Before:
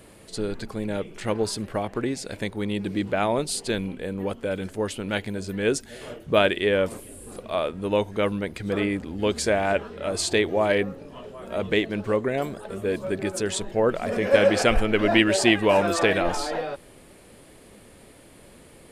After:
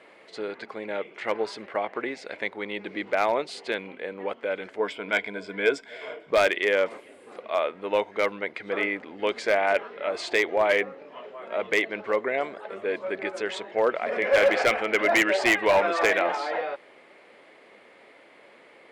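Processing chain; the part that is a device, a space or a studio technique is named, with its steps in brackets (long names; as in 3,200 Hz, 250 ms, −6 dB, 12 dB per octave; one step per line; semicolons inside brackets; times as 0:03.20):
megaphone (band-pass filter 510–2,800 Hz; parametric band 2,100 Hz +8 dB 0.2 octaves; hard clipping −16 dBFS, distortion −14 dB)
0:04.79–0:06.31: EQ curve with evenly spaced ripples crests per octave 1.7, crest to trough 10 dB
level +2 dB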